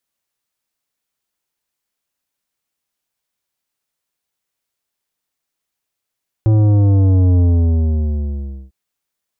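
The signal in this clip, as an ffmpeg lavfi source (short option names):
-f lavfi -i "aevalsrc='0.316*clip((2.25-t)/1.32,0,1)*tanh(3.55*sin(2*PI*110*2.25/log(65/110)*(exp(log(65/110)*t/2.25)-1)))/tanh(3.55)':d=2.25:s=44100"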